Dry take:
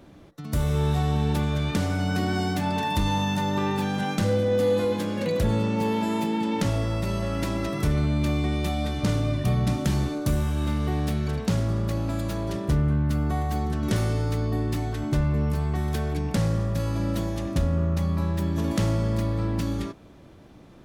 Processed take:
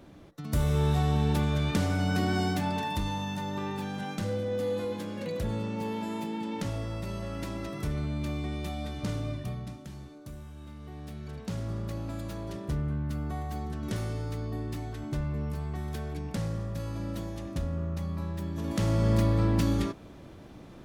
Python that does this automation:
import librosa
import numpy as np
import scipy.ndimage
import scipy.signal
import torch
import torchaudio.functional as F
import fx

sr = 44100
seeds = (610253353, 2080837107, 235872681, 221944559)

y = fx.gain(x, sr, db=fx.line((2.47, -2.0), (3.17, -8.5), (9.31, -8.5), (9.84, -19.5), (10.74, -19.5), (11.72, -8.5), (18.58, -8.5), (19.11, 1.5)))